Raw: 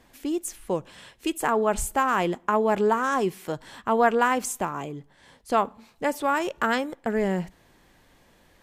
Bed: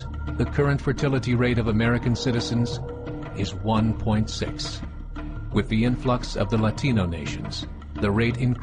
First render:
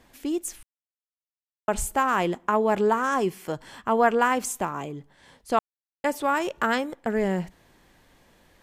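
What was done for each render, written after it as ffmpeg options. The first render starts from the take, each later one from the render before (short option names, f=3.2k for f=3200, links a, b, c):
-filter_complex "[0:a]asettb=1/sr,asplit=3[a][b][c];[a]atrim=end=3.024[d];[b]atrim=start=3.02:end=4.33,asetpts=PTS-STARTPTS,afade=t=in:d=0.004:c=qsin,afade=t=out:st=1.306:d=0.004:c=qsin,bandreject=f=3.8k:w=12[e];[c]atrim=start=4.326[f];[d][e]acrossfade=d=0.004:c1=hsin:c2=qsin[g];[g][f]acrossfade=d=0.004:c1=qsin:c2=hsin,asplit=5[h][i][j][k][l];[h]atrim=end=0.63,asetpts=PTS-STARTPTS,afade=t=out:st=0.626:d=0.004:c=hsin[m];[i]atrim=start=0.63:end=1.68,asetpts=PTS-STARTPTS,volume=0[n];[j]atrim=start=1.68:end=5.59,asetpts=PTS-STARTPTS,afade=t=in:d=0.004:c=hsin,afade=t=out:st=3.906:d=0.004:c=hsin[o];[k]atrim=start=5.59:end=6.04,asetpts=PTS-STARTPTS,volume=0[p];[l]atrim=start=6.04,asetpts=PTS-STARTPTS,afade=t=in:d=0.004:c=hsin[q];[m][n][o][p][q]concat=n=5:v=0:a=1"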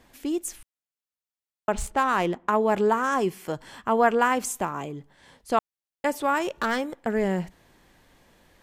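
-filter_complex "[0:a]asettb=1/sr,asplit=3[a][b][c];[a]atrim=end=1.724[d];[b]atrim=start=1.72:end=2.5,asetpts=PTS-STARTPTS,afade=t=in:d=0.004:c=qsin,afade=t=out:st=0.776:d=0.004:c=qsin,adynamicsmooth=sensitivity=7:basefreq=3.2k[e];[c]atrim=start=2.496[f];[d][e]acrossfade=d=0.004:c1=hsin:c2=qsin[g];[g][f]acrossfade=d=0.004:c1=qsin:c2=hsin,asettb=1/sr,asplit=3[h][i][j];[h]atrim=end=6.534[k];[i]atrim=start=6.53:end=7,asetpts=PTS-STARTPTS,afade=t=in:d=0.004:c=qsin,afade=t=out:st=0.466:d=0.004:c=qsin,asoftclip=type=hard:threshold=-19.5dB[l];[j]atrim=start=6.996[m];[k][l]acrossfade=d=0.004:c1=hsin:c2=qsin[n];[n][m]acrossfade=d=0.004:c1=qsin:c2=hsin"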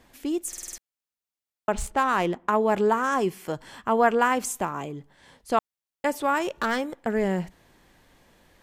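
-filter_complex "[0:a]asplit=7[a][b][c][d][e][f][g];[a]atrim=end=0.532[h];[b]atrim=start=0.478:end=0.532[i];[c]atrim=start=0.478:end=0.532[j];[d]atrim=start=0.478:end=0.532[k];[e]atrim=start=0.478:end=0.532[l];[f]atrim=start=0.478:end=0.532[m];[g]atrim=start=0.778[n];[h][i]acrossfade=d=0.004:c1=hsin:c2=hsin[o];[o][j]acrossfade=d=0.004:c1=hsin:c2=hsin[p];[p][k]acrossfade=d=0.004:c1=hsin:c2=hsin[q];[q][l]acrossfade=d=0.004:c1=hsin:c2=hsin[r];[r][m]acrossfade=d=0.004:c1=hsin:c2=hsin[s];[s][n]acrossfade=d=0.004:c1=hsin:c2=hsin"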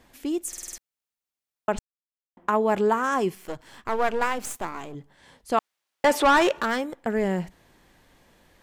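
-filter_complex "[0:a]asettb=1/sr,asplit=3[a][b][c];[a]atrim=end=3.354[d];[b]atrim=start=3.35:end=4.95,asetpts=PTS-STARTPTS,afade=t=in:d=0.004:c=qsin,afade=t=out:st=1.596:d=0.004:c=qsin,aeval=exprs='if(lt(val(0),0),0.251*val(0),val(0))':c=same[e];[c]atrim=start=4.946[f];[d][e]acrossfade=d=0.004:c1=hsin:c2=qsin[g];[g][f]acrossfade=d=0.004:c1=qsin:c2=hsin,asplit=3[h][i][j];[h]afade=t=out:st=5.58:d=0.02[k];[i]asplit=2[l][m];[m]highpass=f=720:p=1,volume=22dB,asoftclip=type=tanh:threshold=-9.5dB[n];[l][n]amix=inputs=2:normalize=0,lowpass=f=3.2k:p=1,volume=-6dB,afade=t=in:st=5.58:d=0.02,afade=t=out:st=6.6:d=0.02[o];[j]afade=t=in:st=6.6:d=0.02[p];[k][o][p]amix=inputs=3:normalize=0,asplit=3[q][r][s];[q]atrim=end=1.79,asetpts=PTS-STARTPTS,afade=t=out:st=1.786:d=0.004:c=hsin[t];[r]atrim=start=1.79:end=2.37,asetpts=PTS-STARTPTS,volume=0[u];[s]atrim=start=2.37,asetpts=PTS-STARTPTS,afade=t=in:d=0.004:c=hsin[v];[t][u][v]concat=n=3:v=0:a=1"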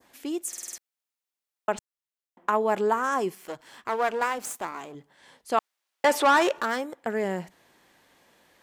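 -af "adynamicequalizer=threshold=0.00708:dfrequency=2800:dqfactor=1:tfrequency=2800:tqfactor=1:attack=5:release=100:ratio=0.375:range=2.5:mode=cutabove:tftype=bell,highpass=f=370:p=1"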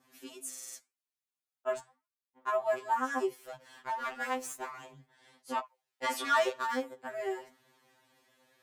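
-af "flanger=delay=6.8:depth=6.9:regen=-81:speed=0.9:shape=sinusoidal,afftfilt=real='re*2.45*eq(mod(b,6),0)':imag='im*2.45*eq(mod(b,6),0)':win_size=2048:overlap=0.75"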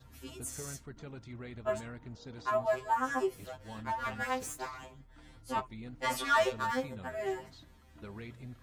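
-filter_complex "[1:a]volume=-24dB[a];[0:a][a]amix=inputs=2:normalize=0"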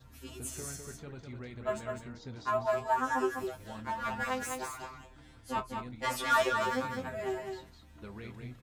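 -filter_complex "[0:a]asplit=2[a][b];[b]adelay=24,volume=-13dB[c];[a][c]amix=inputs=2:normalize=0,asplit=2[d][e];[e]aecho=0:1:204:0.531[f];[d][f]amix=inputs=2:normalize=0"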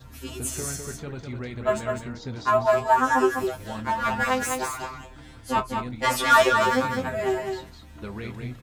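-af "volume=10dB"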